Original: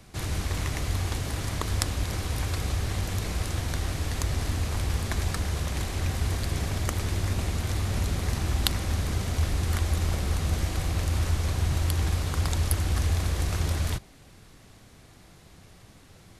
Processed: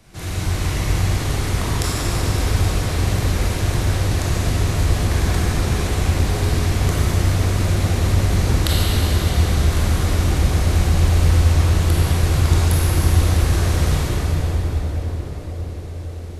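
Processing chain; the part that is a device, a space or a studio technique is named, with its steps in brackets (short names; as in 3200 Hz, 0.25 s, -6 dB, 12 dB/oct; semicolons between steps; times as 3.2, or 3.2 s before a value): narrowing echo 0.55 s, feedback 77%, band-pass 440 Hz, level -7 dB; cathedral (reverb RT60 5.2 s, pre-delay 20 ms, DRR -9 dB); gain -1 dB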